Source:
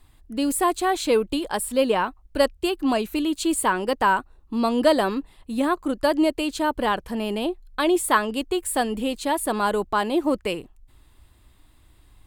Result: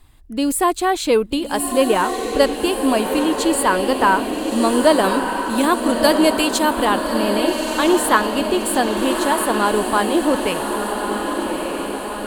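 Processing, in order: 5.04–6.85 high shelf 3100 Hz +11 dB; on a send: diffused feedback echo 1.264 s, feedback 61%, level -5 dB; on the sum: gain +4 dB

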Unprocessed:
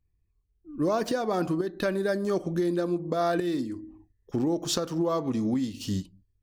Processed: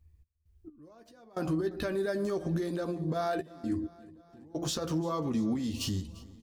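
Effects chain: bell 73 Hz +14 dB 0.52 oct; de-hum 172.1 Hz, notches 4; compressor, threshold -32 dBFS, peak gain reduction 10 dB; limiter -29 dBFS, peak gain reduction 7 dB; step gate "x.x...xxxxxxxx" 66 bpm -24 dB; doubler 13 ms -8 dB; feedback echo 0.346 s, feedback 58%, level -21 dB; gain +5 dB

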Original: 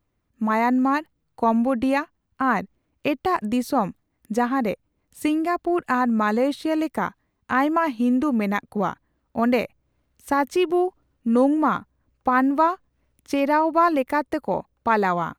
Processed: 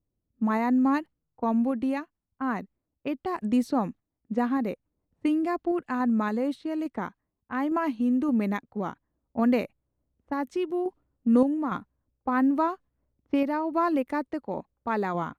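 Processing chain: low-pass opened by the level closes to 540 Hz, open at -19 dBFS; dynamic EQ 270 Hz, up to +7 dB, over -33 dBFS, Q 0.96; random-step tremolo; gain -6.5 dB

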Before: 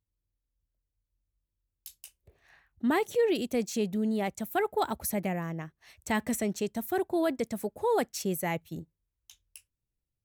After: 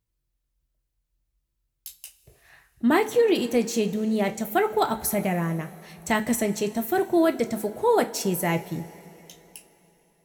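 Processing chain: two-slope reverb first 0.23 s, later 3.6 s, from -21 dB, DRR 5.5 dB; gain +5.5 dB

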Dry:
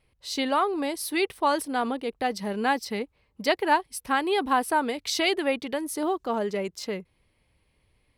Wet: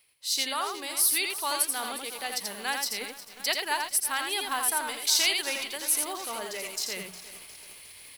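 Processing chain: HPF 54 Hz; pre-emphasis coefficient 0.97; notches 60/120/180 Hz; reverse; upward compressor, threshold -40 dBFS; reverse; echo 84 ms -4.5 dB; lo-fi delay 0.358 s, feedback 80%, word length 8-bit, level -13.5 dB; gain +8.5 dB

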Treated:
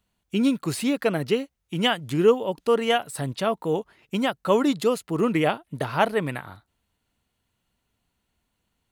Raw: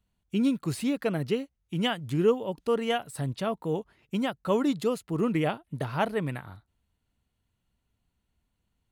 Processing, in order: low shelf 190 Hz -10 dB; gain +7 dB

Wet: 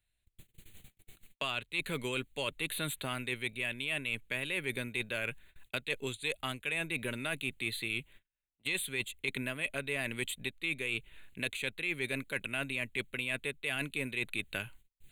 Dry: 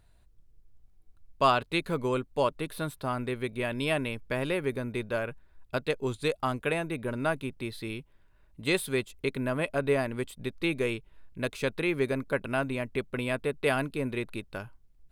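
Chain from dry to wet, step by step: wow and flutter 28 cents; resonant high shelf 1600 Hz +12.5 dB, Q 1.5; reverse; compressor 16:1, threshold -28 dBFS, peak gain reduction 18 dB; reverse; gate -52 dBFS, range -40 dB; in parallel at -7 dB: hard clip -26.5 dBFS, distortion -12 dB; on the sum: Butterworth band-stop 5300 Hz, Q 2; three-band squash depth 70%; gain -6 dB

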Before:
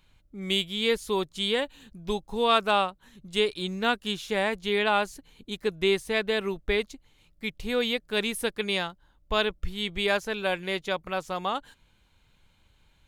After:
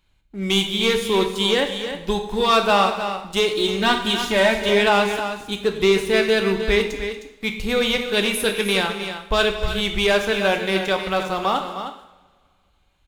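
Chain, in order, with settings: 3.53–4.69 comb 3.2 ms, depth 80%; sample leveller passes 2; tapped delay 0.233/0.31 s -16.5/-9.5 dB; two-slope reverb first 0.69 s, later 2.2 s, from -20 dB, DRR 4.5 dB

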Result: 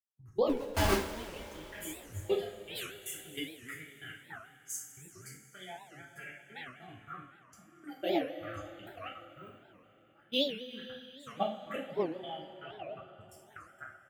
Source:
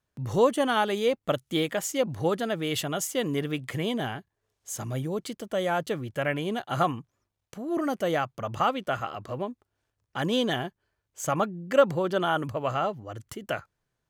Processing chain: 9.22–10.46 block floating point 7-bit; outdoor echo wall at 51 m, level -7 dB; envelope phaser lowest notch 300 Hz, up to 1400 Hz, full sweep at -22.5 dBFS; low shelf 390 Hz +4 dB; 0.5–1.14 Schmitt trigger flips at -26 dBFS; dynamic EQ 240 Hz, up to -6 dB, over -44 dBFS, Q 2.5; level quantiser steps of 13 dB; spectral noise reduction 15 dB; step gate "..x.xx..xx" 157 bpm -24 dB; two-slope reverb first 0.42 s, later 4 s, from -18 dB, DRR -5.5 dB; record warp 78 rpm, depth 250 cents; gain -4 dB

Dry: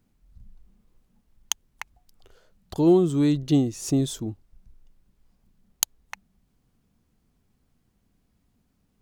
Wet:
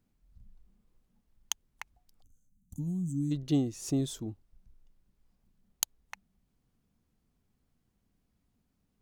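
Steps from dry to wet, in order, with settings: spectral gain 2.22–3.31, 290–5900 Hz -28 dB; gain -7 dB

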